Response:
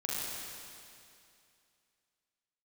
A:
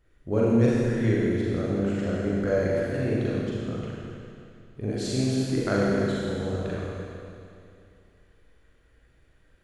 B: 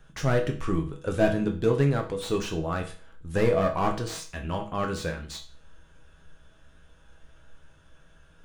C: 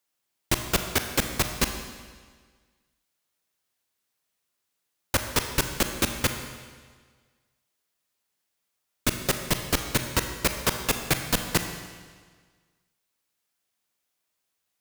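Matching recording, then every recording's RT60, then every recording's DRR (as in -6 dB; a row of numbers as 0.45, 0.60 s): A; 2.5, 0.40, 1.6 s; -7.0, 2.5, 5.5 dB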